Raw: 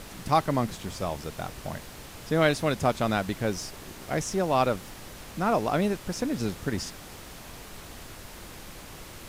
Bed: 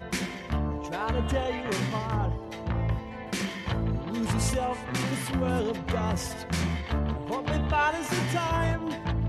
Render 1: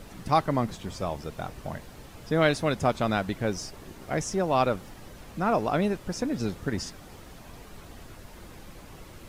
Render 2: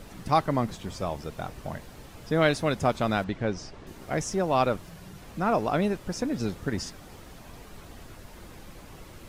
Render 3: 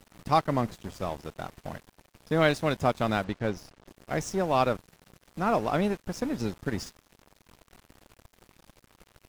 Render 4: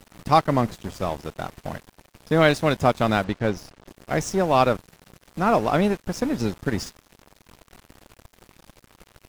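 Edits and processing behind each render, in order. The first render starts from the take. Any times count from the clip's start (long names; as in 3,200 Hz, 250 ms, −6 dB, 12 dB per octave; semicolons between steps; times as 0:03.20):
broadband denoise 8 dB, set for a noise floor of −45 dBFS
0:03.24–0:03.87: high-frequency loss of the air 110 metres; 0:04.77–0:05.22: frequency shifter −190 Hz
dead-zone distortion −41.5 dBFS
level +6 dB; brickwall limiter −3 dBFS, peak gain reduction 1 dB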